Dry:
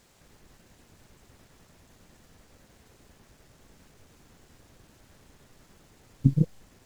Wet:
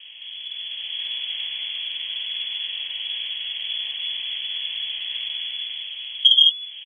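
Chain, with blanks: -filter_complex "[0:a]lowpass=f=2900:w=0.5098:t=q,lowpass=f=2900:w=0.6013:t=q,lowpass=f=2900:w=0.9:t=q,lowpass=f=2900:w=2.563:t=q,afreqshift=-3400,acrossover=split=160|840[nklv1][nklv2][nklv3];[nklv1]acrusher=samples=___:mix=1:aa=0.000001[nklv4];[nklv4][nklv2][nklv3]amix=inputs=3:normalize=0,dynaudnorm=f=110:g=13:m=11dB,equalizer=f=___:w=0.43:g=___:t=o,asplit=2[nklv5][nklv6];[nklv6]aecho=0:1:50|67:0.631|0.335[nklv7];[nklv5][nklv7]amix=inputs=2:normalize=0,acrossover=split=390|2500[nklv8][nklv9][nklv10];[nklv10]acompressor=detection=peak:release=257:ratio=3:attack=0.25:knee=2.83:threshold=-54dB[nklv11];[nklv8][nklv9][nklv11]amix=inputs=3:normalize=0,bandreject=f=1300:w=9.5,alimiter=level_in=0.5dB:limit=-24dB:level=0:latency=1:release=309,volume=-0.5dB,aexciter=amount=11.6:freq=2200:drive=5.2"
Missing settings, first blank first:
35, 130, 8.5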